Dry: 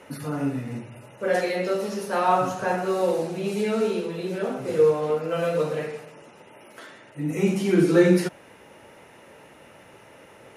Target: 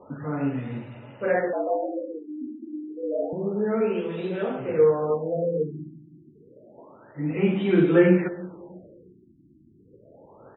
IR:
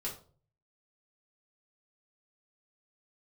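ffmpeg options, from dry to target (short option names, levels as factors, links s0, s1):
-filter_complex "[0:a]asplit=2[s0][s1];[s1]adelay=321,lowpass=f=2000:p=1,volume=0.112,asplit=2[s2][s3];[s3]adelay=321,lowpass=f=2000:p=1,volume=0.37,asplit=2[s4][s5];[s5]adelay=321,lowpass=f=2000:p=1,volume=0.37[s6];[s0][s2][s4][s6]amix=inputs=4:normalize=0,asettb=1/sr,asplit=3[s7][s8][s9];[s7]atrim=end=1.534[s10];[s8]atrim=start=1.53:end=3.33,asetpts=PTS-STARTPTS,afade=t=in:d=0.004:c=qsin,afade=t=out:st=1.796:d=0.004:c=qsin,afreqshift=120[s11];[s9]atrim=start=3.326[s12];[s10][s11]acrossfade=d=0.004:c1=hsin:c2=qsin[s13];[s13][s12]acrossfade=d=0.004:c1=qsin:c2=hsin,afftfilt=real='re*lt(b*sr/1024,350*pow(4000/350,0.5+0.5*sin(2*PI*0.29*pts/sr)))':imag='im*lt(b*sr/1024,350*pow(4000/350,0.5+0.5*sin(2*PI*0.29*pts/sr)))':win_size=1024:overlap=0.75"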